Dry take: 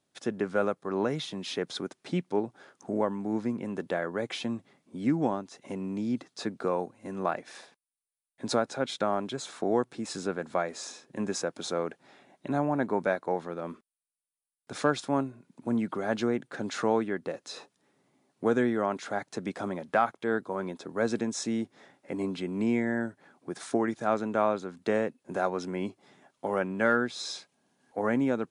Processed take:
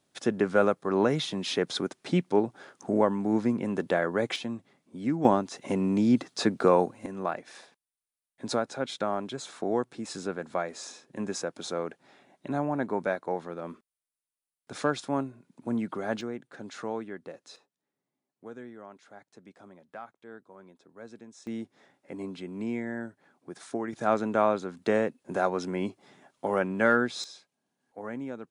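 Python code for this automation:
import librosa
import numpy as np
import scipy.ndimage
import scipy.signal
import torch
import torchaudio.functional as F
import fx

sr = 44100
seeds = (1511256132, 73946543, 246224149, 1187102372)

y = fx.gain(x, sr, db=fx.steps((0.0, 4.5), (4.36, -2.0), (5.25, 8.0), (7.06, -1.5), (16.21, -8.0), (17.56, -18.0), (21.47, -5.5), (23.93, 2.0), (27.24, -10.0)))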